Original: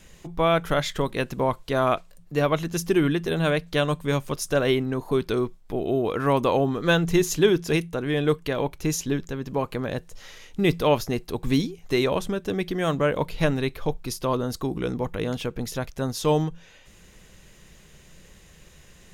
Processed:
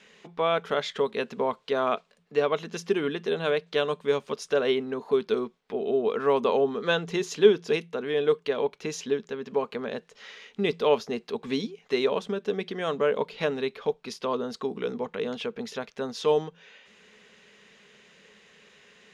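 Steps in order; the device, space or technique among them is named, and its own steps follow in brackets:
inside a cardboard box (low-pass filter 3,200 Hz 12 dB per octave; hollow resonant body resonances 220/420 Hz, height 16 dB, ringing for 60 ms)
dynamic equaliser 2,000 Hz, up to −7 dB, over −37 dBFS, Q 1
high-pass filter 870 Hz 6 dB per octave
tilt shelving filter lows −5 dB, about 910 Hz

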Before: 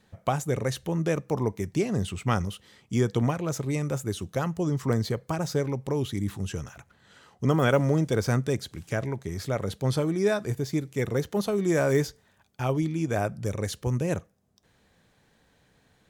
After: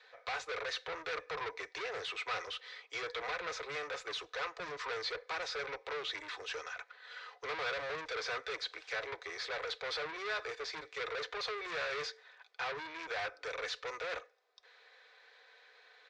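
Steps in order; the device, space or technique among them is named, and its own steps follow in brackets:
Butterworth high-pass 300 Hz 96 dB per octave
comb filter 4 ms, depth 46%
scooped metal amplifier (tube saturation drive 39 dB, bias 0.3; loudspeaker in its box 77–3,800 Hz, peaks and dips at 81 Hz −8 dB, 210 Hz −9 dB, 440 Hz +7 dB, 850 Hz −3 dB, 3,000 Hz −9 dB; guitar amp tone stack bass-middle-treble 10-0-10)
level +14.5 dB

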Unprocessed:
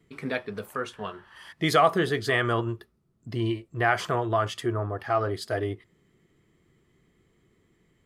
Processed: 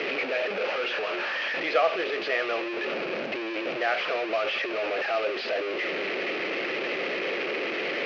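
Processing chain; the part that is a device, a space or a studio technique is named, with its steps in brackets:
digital answering machine (band-pass filter 320–3,200 Hz; linear delta modulator 32 kbit/s, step −20 dBFS; loudspeaker in its box 360–4,100 Hz, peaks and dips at 550 Hz +10 dB, 1,000 Hz −8 dB, 2,500 Hz +9 dB, 3,600 Hz −5 dB)
level −4 dB

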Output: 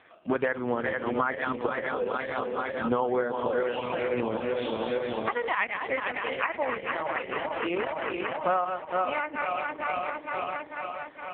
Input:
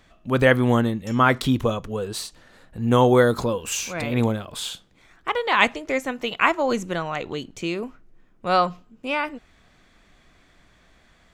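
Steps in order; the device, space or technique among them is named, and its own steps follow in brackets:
feedback delay that plays each chunk backwards 227 ms, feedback 80%, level −7 dB
dynamic equaliser 1,900 Hz, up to +6 dB, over −39 dBFS, Q 6.6
voicemail (band-pass filter 370–2,800 Hz; downward compressor 12 to 1, threshold −31 dBFS, peak gain reduction 20.5 dB; level +8.5 dB; AMR narrowband 4.75 kbit/s 8,000 Hz)

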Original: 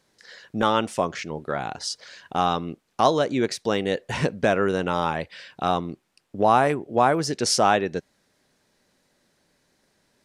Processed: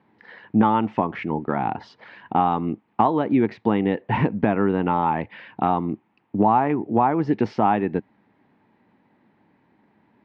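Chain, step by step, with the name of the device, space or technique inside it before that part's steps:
bass amplifier (downward compressor 3 to 1, threshold −24 dBFS, peak gain reduction 9 dB; loudspeaker in its box 79–2,400 Hz, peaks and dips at 110 Hz +6 dB, 210 Hz +8 dB, 300 Hz +7 dB, 560 Hz −6 dB, 880 Hz +9 dB, 1,500 Hz −5 dB)
level +4.5 dB

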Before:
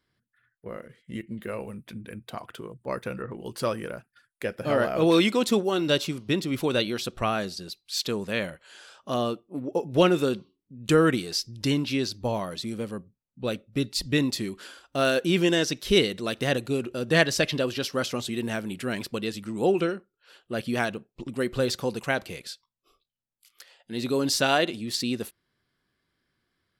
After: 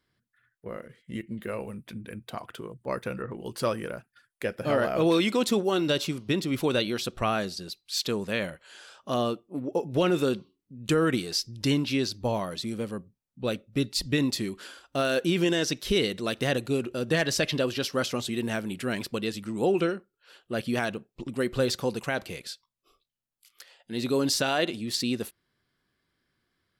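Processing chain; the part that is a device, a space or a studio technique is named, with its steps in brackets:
clipper into limiter (hard clipping −9 dBFS, distortion −34 dB; brickwall limiter −15 dBFS, peak gain reduction 6 dB)

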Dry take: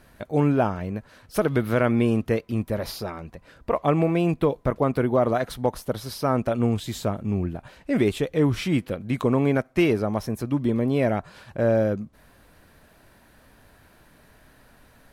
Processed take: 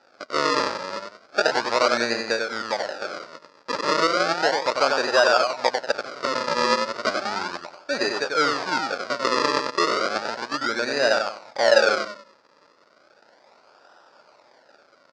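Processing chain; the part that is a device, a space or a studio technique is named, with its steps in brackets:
0:06.50–0:07.30: EQ curve with evenly spaced ripples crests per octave 1.4, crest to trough 12 dB
repeating echo 94 ms, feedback 30%, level −4 dB
circuit-bent sampling toy (sample-and-hold swept by an LFO 40×, swing 100% 0.34 Hz; loudspeaker in its box 560–6,000 Hz, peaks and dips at 570 Hz +6 dB, 870 Hz +4 dB, 1,400 Hz +9 dB, 3,100 Hz −5 dB, 4,800 Hz +10 dB)
level +1 dB

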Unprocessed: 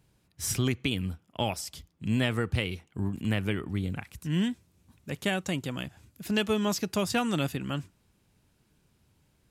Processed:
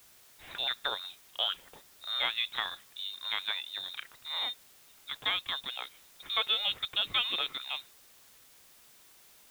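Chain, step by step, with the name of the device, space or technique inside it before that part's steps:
scrambled radio voice (band-pass filter 330–3,100 Hz; voice inversion scrambler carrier 3,900 Hz; white noise bed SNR 22 dB)

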